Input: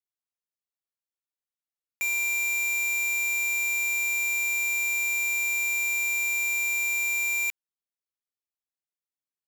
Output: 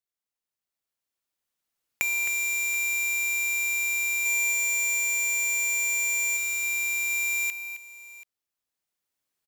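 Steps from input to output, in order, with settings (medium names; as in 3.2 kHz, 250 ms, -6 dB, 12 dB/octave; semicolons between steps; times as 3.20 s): recorder AGC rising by 6.3 dB/s; 4.25–6.37 s: comb 4.1 ms, depth 76%; multi-tap echo 264/732 ms -11/-19 dB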